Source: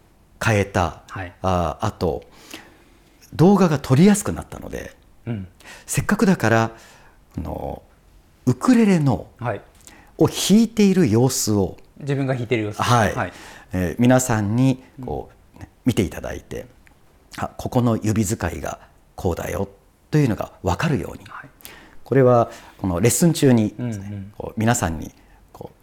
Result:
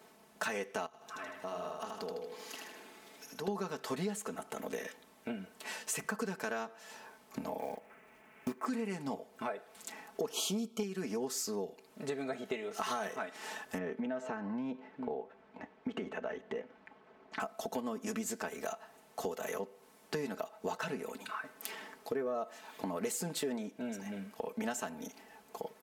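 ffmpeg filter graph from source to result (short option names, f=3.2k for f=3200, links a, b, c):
-filter_complex "[0:a]asettb=1/sr,asplit=3[a][b][c];[a]atrim=end=0.864[d];[b]atrim=start=0.86:end=3.48,asetpts=PTS-STARTPTS,afade=t=in:d=0.004:c=qsin,afade=t=out:st=2.616:d=0.004:c=qsin,acompressor=threshold=-47dB:ratio=2:attack=3.2:release=140:knee=1:detection=peak,aecho=1:1:78|156|234|312|390|468|546:0.668|0.354|0.188|0.0995|0.0527|0.0279|0.0148,atrim=end_sample=115542[e];[c]atrim=start=3.476[f];[d][e]acrossfade=d=0.004:c1=hsin:c2=qsin[g];[g][f]acrossfade=d=0.004:c1=qsin:c2=hsin,asettb=1/sr,asplit=3[h][i][j];[h]atrim=end=7.594[k];[i]atrim=start=7.59:end=8.66,asetpts=PTS-STARTPTS,afade=t=in:d=0.004:c=qsin,afade=t=out:st=1.066:d=0.004:c=qsin,highshelf=f=3.2k:t=q:w=3:g=-12,acrusher=bits=6:mode=log:mix=0:aa=0.000001[l];[j]atrim=start=8.656[m];[k][l]acrossfade=d=0.004:c1=hsin:c2=qsin[n];[n][m]acrossfade=d=0.004:c1=qsin:c2=hsin,asettb=1/sr,asplit=3[o][p][q];[o]atrim=end=10.334[r];[p]atrim=start=10.33:end=10.83,asetpts=PTS-STARTPTS,afade=t=in:d=0.004:c=qsin,afade=t=out:st=0.496:d=0.004:c=qsin,asuperstop=centerf=1800:order=20:qfactor=2.4,acontrast=39[s];[q]atrim=start=10.826[t];[r][s]acrossfade=d=0.004:c1=hsin:c2=qsin[u];[u][t]acrossfade=d=0.004:c1=qsin:c2=hsin,asettb=1/sr,asplit=3[v][w][x];[v]atrim=end=13.784[y];[w]atrim=start=13.78:end=17.4,asetpts=PTS-STARTPTS,afade=t=in:d=0.004:c=qsin,afade=t=out:st=3.616:d=0.004:c=qsin,lowpass=2.2k,acompressor=threshold=-18dB:ratio=6:attack=3.2:release=140:knee=1:detection=peak[z];[x]atrim=start=17.396[aa];[y][z]acrossfade=d=0.004:c1=hsin:c2=qsin[ab];[ab][aa]acrossfade=d=0.004:c1=qsin:c2=hsin,highpass=310,aecho=1:1:4.6:0.78,acompressor=threshold=-33dB:ratio=5,volume=-3dB"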